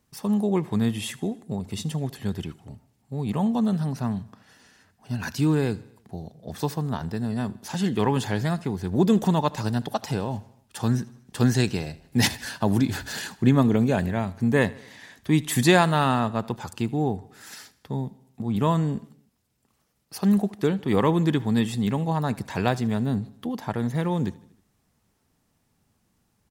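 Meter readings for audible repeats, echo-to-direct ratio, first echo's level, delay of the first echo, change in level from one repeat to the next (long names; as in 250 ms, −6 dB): 3, −20.0 dB, −21.5 dB, 78 ms, −5.0 dB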